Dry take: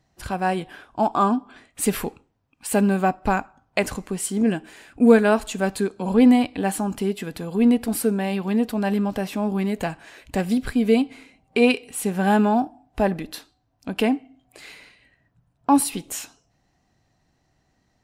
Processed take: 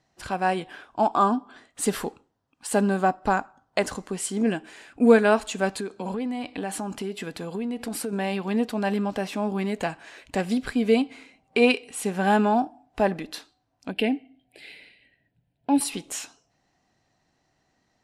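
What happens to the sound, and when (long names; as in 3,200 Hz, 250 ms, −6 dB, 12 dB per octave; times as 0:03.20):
0:01.17–0:04.13: parametric band 2,400 Hz −8 dB 0.37 octaves
0:05.72–0:08.13: downward compressor 10 to 1, threshold −23 dBFS
0:13.91–0:15.81: phaser with its sweep stopped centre 2,800 Hz, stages 4
whole clip: low-pass filter 9,100 Hz 12 dB per octave; low-shelf EQ 160 Hz −11 dB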